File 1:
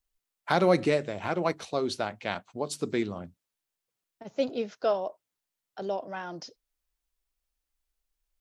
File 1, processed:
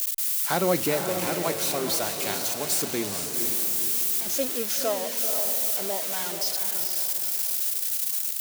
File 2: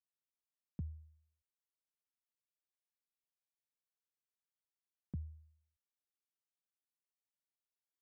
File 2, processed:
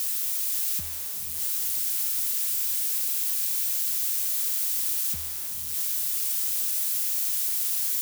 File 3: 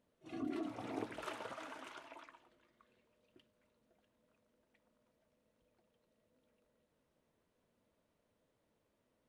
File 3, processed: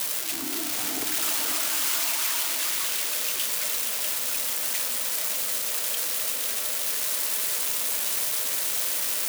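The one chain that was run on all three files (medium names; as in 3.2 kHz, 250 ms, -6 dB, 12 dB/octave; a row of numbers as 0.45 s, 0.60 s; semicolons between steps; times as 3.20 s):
zero-crossing glitches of -18 dBFS; echo that smears into a reverb 474 ms, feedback 48%, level -6 dB; normalise loudness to -24 LUFS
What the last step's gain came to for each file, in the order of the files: -1.5 dB, -1.5 dB, +3.0 dB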